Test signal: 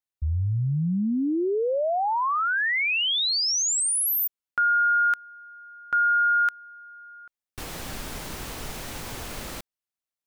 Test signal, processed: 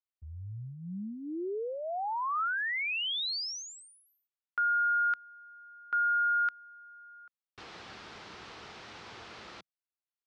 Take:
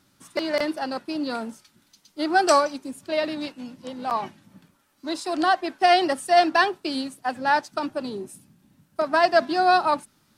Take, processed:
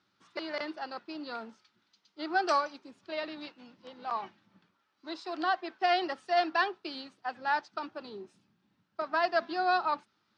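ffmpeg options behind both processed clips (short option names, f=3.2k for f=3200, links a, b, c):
-af "highpass=140,equalizer=f=150:t=q:w=4:g=-10,equalizer=f=260:t=q:w=4:g=-9,equalizer=f=570:t=q:w=4:g=-5,equalizer=f=1.3k:t=q:w=4:g=3,lowpass=f=5k:w=0.5412,lowpass=f=5k:w=1.3066,volume=-8.5dB"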